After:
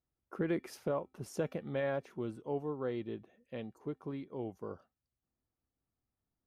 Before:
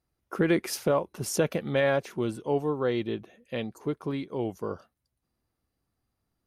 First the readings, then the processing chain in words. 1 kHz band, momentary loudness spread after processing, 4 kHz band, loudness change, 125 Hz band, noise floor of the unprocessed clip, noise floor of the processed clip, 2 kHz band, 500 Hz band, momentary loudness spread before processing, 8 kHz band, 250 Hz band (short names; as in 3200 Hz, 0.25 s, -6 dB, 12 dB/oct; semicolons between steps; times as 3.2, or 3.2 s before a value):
-10.5 dB, 11 LU, -16.5 dB, -10.0 dB, -9.5 dB, -82 dBFS, under -85 dBFS, -12.5 dB, -9.5 dB, 11 LU, under -15 dB, -9.5 dB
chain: high shelf 2500 Hz -10.5 dB; resonator 260 Hz, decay 0.32 s, harmonics odd, mix 40%; gain -5 dB